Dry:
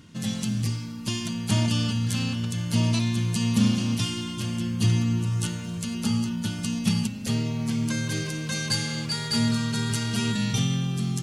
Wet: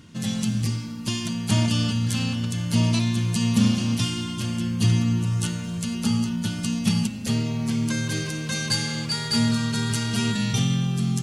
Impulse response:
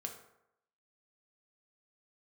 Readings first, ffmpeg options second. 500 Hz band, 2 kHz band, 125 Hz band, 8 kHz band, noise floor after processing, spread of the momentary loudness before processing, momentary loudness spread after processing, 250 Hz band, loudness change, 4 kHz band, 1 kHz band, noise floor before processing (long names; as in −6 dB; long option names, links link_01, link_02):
+1.5 dB, +2.0 dB, +2.0 dB, +2.0 dB, −32 dBFS, 6 LU, 6 LU, +2.0 dB, +2.0 dB, +2.0 dB, +2.0 dB, −34 dBFS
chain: -filter_complex "[0:a]asplit=2[link_01][link_02];[1:a]atrim=start_sample=2205,asetrate=22491,aresample=44100[link_03];[link_02][link_03]afir=irnorm=-1:irlink=0,volume=-12.5dB[link_04];[link_01][link_04]amix=inputs=2:normalize=0"